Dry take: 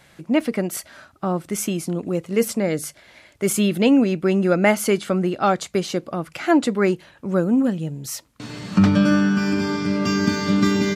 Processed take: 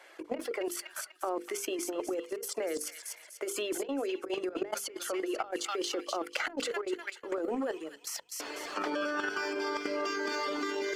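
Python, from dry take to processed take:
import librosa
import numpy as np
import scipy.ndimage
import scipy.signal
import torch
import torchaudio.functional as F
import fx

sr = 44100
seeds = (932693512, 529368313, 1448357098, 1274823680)

y = scipy.signal.sosfilt(scipy.signal.butter(8, 330.0, 'highpass', fs=sr, output='sos'), x)
y = fx.dereverb_blind(y, sr, rt60_s=0.84)
y = fx.leveller(y, sr, passes=1)
y = fx.dynamic_eq(y, sr, hz=2300.0, q=4.9, threshold_db=-42.0, ratio=4.0, max_db=-3)
y = fx.level_steps(y, sr, step_db=15)
y = fx.notch(y, sr, hz=3800.0, q=11.0)
y = fx.echo_wet_highpass(y, sr, ms=246, feedback_pct=37, hz=2500.0, wet_db=-9.0)
y = fx.over_compress(y, sr, threshold_db=-34.0, ratio=-1.0)
y = fx.high_shelf(y, sr, hz=4500.0, db=-9.0)
y = fx.hum_notches(y, sr, base_hz=50, count=10)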